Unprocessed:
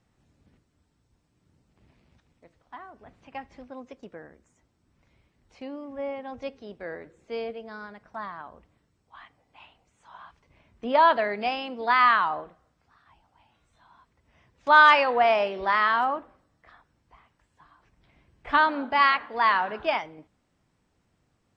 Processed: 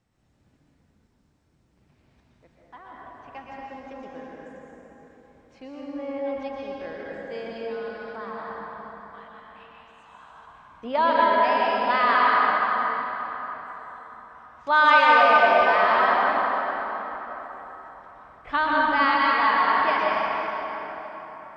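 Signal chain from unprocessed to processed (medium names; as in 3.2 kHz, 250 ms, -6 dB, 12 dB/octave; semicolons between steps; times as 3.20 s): plate-style reverb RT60 4.5 s, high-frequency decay 0.6×, pre-delay 105 ms, DRR -5 dB; trim -3.5 dB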